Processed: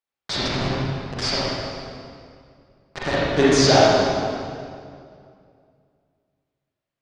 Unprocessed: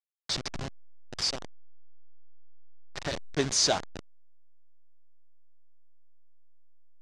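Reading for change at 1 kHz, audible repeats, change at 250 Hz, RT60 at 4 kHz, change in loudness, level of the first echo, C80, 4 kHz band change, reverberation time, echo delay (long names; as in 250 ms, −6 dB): +15.5 dB, no echo audible, +16.5 dB, 1.7 s, +9.0 dB, no echo audible, −2.0 dB, +7.0 dB, 2.3 s, no echo audible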